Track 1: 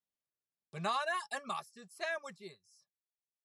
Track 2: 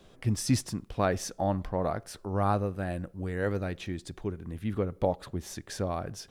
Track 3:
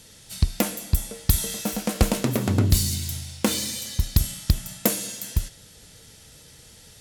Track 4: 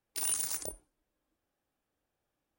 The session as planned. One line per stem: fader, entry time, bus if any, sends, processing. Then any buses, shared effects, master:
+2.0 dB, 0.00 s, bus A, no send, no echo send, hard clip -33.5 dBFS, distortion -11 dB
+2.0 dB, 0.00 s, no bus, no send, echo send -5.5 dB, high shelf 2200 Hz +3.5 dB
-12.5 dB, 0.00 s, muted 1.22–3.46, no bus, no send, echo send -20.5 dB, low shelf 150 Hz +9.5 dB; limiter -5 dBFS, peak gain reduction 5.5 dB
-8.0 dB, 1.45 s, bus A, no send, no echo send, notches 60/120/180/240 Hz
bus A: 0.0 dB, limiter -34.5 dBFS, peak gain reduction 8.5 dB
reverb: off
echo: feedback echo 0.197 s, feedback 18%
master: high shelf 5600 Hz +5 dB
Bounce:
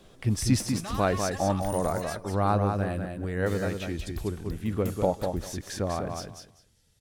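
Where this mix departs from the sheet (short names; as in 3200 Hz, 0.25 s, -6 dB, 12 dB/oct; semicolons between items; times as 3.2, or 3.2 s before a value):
stem 2: missing high shelf 2200 Hz +3.5 dB; stem 3 -12.5 dB -> -21.0 dB; master: missing high shelf 5600 Hz +5 dB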